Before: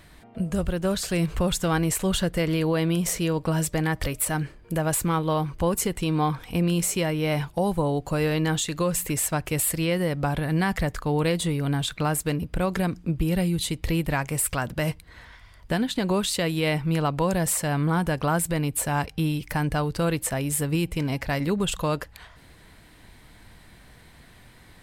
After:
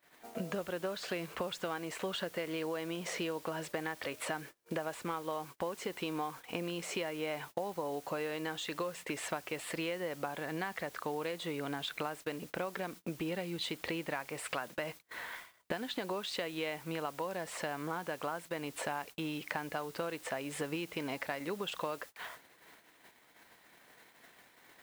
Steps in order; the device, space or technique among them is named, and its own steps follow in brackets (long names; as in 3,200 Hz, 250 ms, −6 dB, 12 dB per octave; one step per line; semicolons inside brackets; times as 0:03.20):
baby monitor (band-pass filter 390–3,400 Hz; downward compressor 8 to 1, threshold −40 dBFS, peak gain reduction 19.5 dB; white noise bed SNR 17 dB; noise gate −53 dBFS, range −28 dB)
level +5.5 dB